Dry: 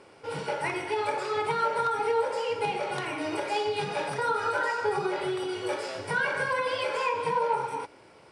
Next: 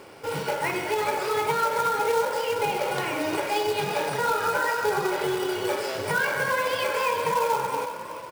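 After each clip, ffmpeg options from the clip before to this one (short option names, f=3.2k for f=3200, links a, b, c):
-filter_complex "[0:a]asplit=2[a][b];[b]acompressor=threshold=-36dB:ratio=16,volume=2dB[c];[a][c]amix=inputs=2:normalize=0,asplit=6[d][e][f][g][h][i];[e]adelay=364,afreqshift=31,volume=-10dB[j];[f]adelay=728,afreqshift=62,volume=-17.1dB[k];[g]adelay=1092,afreqshift=93,volume=-24.3dB[l];[h]adelay=1456,afreqshift=124,volume=-31.4dB[m];[i]adelay=1820,afreqshift=155,volume=-38.5dB[n];[d][j][k][l][m][n]amix=inputs=6:normalize=0,acrusher=bits=3:mode=log:mix=0:aa=0.000001"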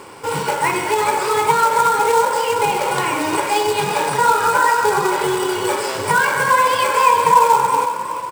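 -af "equalizer=f=630:t=o:w=0.33:g=-6,equalizer=f=1k:t=o:w=0.33:g=9,equalizer=f=8k:t=o:w=0.33:g=9,volume=7dB"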